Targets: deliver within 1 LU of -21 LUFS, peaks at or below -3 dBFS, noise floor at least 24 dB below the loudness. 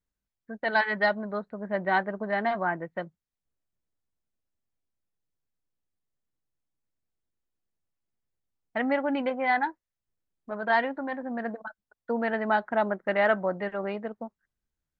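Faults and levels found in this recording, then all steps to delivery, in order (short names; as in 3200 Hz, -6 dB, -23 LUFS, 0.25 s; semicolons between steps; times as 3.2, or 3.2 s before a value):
loudness -28.5 LUFS; peak -11.5 dBFS; loudness target -21.0 LUFS
-> gain +7.5 dB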